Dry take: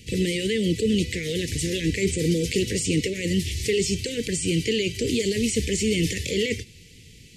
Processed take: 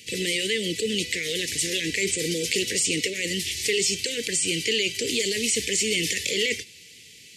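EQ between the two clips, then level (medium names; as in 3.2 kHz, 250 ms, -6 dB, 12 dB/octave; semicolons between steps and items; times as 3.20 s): high-pass 1 kHz 6 dB/octave; +5.0 dB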